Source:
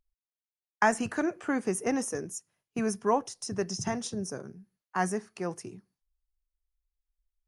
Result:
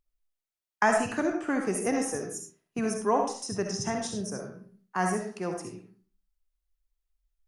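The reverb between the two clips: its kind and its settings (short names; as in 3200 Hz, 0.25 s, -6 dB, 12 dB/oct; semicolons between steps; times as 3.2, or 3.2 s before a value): digital reverb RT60 0.45 s, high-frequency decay 0.65×, pre-delay 25 ms, DRR 2.5 dB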